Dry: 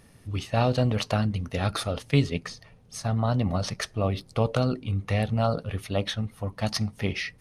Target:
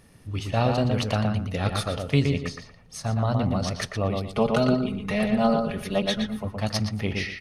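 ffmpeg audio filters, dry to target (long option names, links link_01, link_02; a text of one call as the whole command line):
ffmpeg -i in.wav -filter_complex "[0:a]asettb=1/sr,asplit=3[link_01][link_02][link_03];[link_01]atrim=end=4.224[link_04];[link_02]atrim=start=4.22:end=6.45,asetpts=PTS-STARTPTS,afade=type=in:duration=0.004:curve=qsin,afade=type=out:start_time=2.226:duration=0.004:curve=qsin,aecho=1:1:4.8:0.98,atrim=end_sample=98343[link_05];[link_03]atrim=start=6.446[link_06];[link_04][link_05]acrossfade=duration=0.004:curve1=hsin:curve2=qsin[link_07];[link_07][link_06]acrossfade=duration=0.004:curve1=qsin:curve2=hsin,asplit=2[link_08][link_09];[link_09]adelay=118,lowpass=frequency=2800:poles=1,volume=-3.5dB,asplit=2[link_10][link_11];[link_11]adelay=118,lowpass=frequency=2800:poles=1,volume=0.24,asplit=2[link_12][link_13];[link_13]adelay=118,lowpass=frequency=2800:poles=1,volume=0.24[link_14];[link_08][link_10][link_12][link_14]amix=inputs=4:normalize=0" out.wav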